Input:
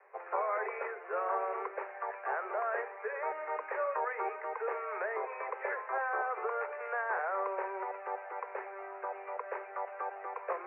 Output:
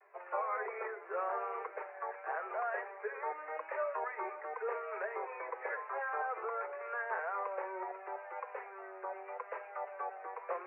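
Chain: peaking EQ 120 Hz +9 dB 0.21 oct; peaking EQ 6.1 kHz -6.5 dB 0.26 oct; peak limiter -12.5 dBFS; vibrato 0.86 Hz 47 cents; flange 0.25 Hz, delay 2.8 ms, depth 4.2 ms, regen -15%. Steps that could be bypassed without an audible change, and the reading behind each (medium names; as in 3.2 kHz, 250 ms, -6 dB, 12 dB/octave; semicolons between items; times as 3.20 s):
peaking EQ 120 Hz: input has nothing below 320 Hz; peaking EQ 6.1 kHz: input has nothing above 2.6 kHz; peak limiter -12.5 dBFS: peak at its input -21.5 dBFS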